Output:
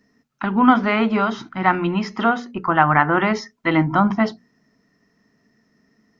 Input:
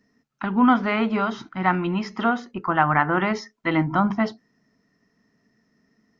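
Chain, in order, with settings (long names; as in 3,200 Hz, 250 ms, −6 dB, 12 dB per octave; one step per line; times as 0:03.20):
mains-hum notches 60/120/180/240 Hz
level +4 dB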